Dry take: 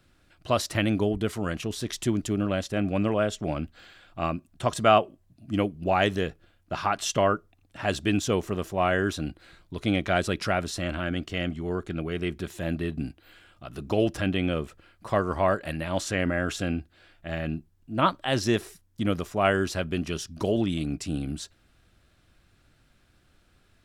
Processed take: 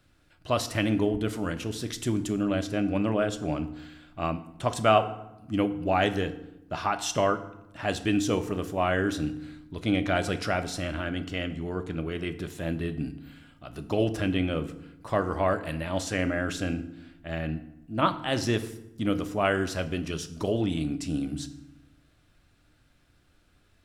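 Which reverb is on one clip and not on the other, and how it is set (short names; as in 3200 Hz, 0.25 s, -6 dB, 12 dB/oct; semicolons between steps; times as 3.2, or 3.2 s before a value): FDN reverb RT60 0.87 s, low-frequency decay 1.45×, high-frequency decay 0.7×, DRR 9 dB; gain -2 dB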